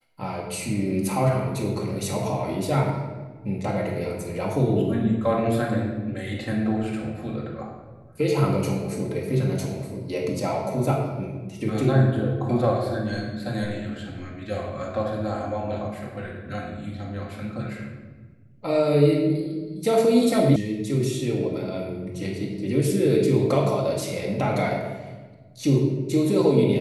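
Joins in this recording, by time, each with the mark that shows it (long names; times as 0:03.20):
0:20.56: cut off before it has died away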